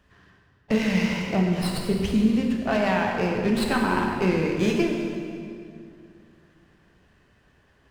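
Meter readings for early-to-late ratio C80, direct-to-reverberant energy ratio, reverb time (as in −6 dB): 3.5 dB, 0.0 dB, 2.4 s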